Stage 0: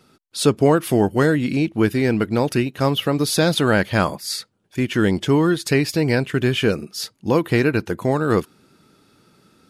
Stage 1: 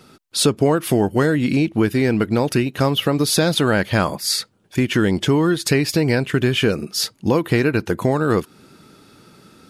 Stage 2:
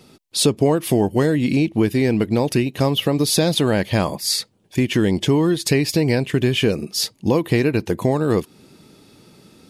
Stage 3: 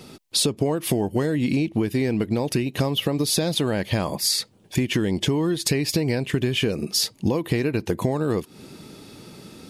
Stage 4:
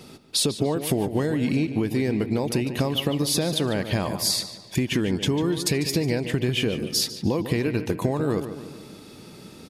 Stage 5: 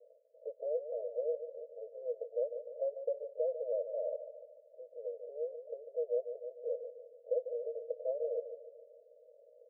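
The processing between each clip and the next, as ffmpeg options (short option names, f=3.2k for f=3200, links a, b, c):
-af "acompressor=threshold=-24dB:ratio=2.5,volume=7.5dB"
-af "equalizer=f=1.4k:t=o:w=0.49:g=-10.5"
-af "acompressor=threshold=-25dB:ratio=6,volume=5.5dB"
-filter_complex "[0:a]asplit=2[a][b];[b]adelay=147,lowpass=f=3.8k:p=1,volume=-10dB,asplit=2[c][d];[d]adelay=147,lowpass=f=3.8k:p=1,volume=0.52,asplit=2[e][f];[f]adelay=147,lowpass=f=3.8k:p=1,volume=0.52,asplit=2[g][h];[h]adelay=147,lowpass=f=3.8k:p=1,volume=0.52,asplit=2[i][j];[j]adelay=147,lowpass=f=3.8k:p=1,volume=0.52,asplit=2[k][l];[l]adelay=147,lowpass=f=3.8k:p=1,volume=0.52[m];[a][c][e][g][i][k][m]amix=inputs=7:normalize=0,volume=-1.5dB"
-af "asuperpass=centerf=550:order=12:qfactor=2.9,volume=-3dB"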